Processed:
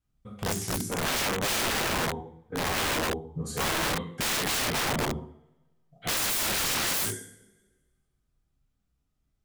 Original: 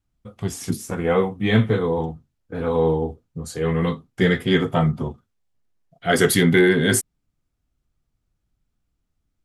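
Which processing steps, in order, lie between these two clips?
coupled-rooms reverb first 0.6 s, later 1.5 s, from −25 dB, DRR −3 dB
wrap-around overflow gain 16.5 dB
level −6.5 dB

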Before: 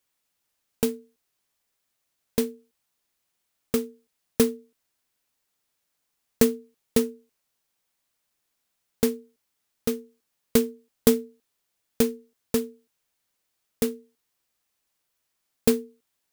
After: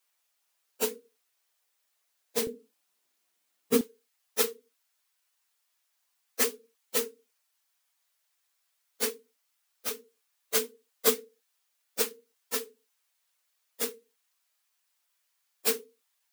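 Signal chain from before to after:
random phases in long frames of 50 ms
high-pass filter 560 Hz 12 dB per octave, from 0:02.47 240 Hz, from 0:03.81 820 Hz
level +1.5 dB

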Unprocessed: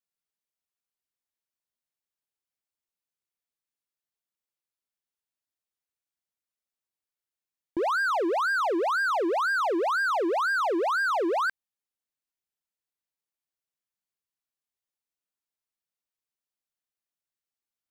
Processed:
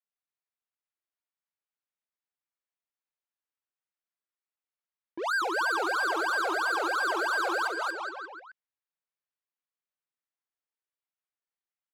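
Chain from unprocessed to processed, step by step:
high-pass filter 690 Hz 6 dB per octave
high-shelf EQ 2,700 Hz +8 dB
bouncing-ball delay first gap 340 ms, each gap 0.85×, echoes 5
brickwall limiter −18 dBFS, peak gain reduction 3 dB
low-pass that shuts in the quiet parts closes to 1,800 Hz, open at −23.5 dBFS
tempo change 1.5×
level −2 dB

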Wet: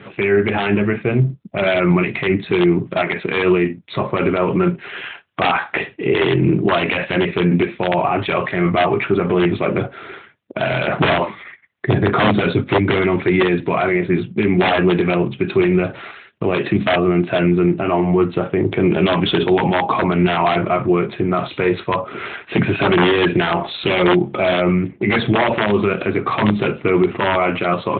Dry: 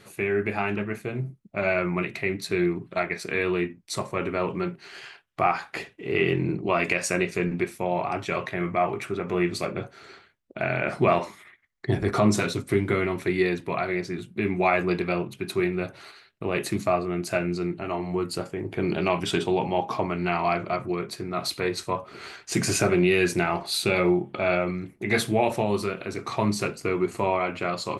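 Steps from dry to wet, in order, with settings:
wrap-around overflow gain 14 dB
boost into a limiter +20 dB
level −5 dB
AMR narrowband 12.2 kbit/s 8,000 Hz

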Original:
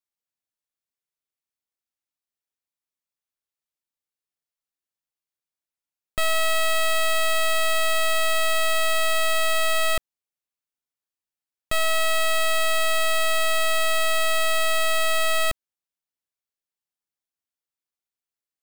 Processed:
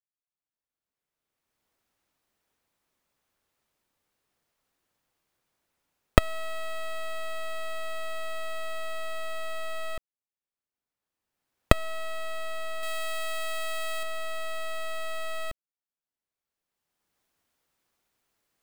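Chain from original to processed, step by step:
camcorder AGC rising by 18 dB per second
high-shelf EQ 2,400 Hz −11 dB, from 0:12.83 −2 dB, from 0:14.03 −8.5 dB
level −10 dB

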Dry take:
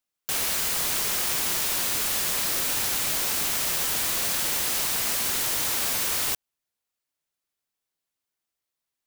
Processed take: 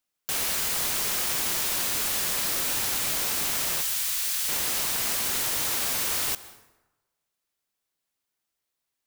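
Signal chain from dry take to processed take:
0:03.81–0:04.49: guitar amp tone stack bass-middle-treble 10-0-10
in parallel at +2.5 dB: brickwall limiter −24 dBFS, peak gain reduction 10.5 dB
on the sum: dense smooth reverb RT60 1.1 s, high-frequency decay 0.6×, pre-delay 115 ms, DRR 16 dB
level −5 dB

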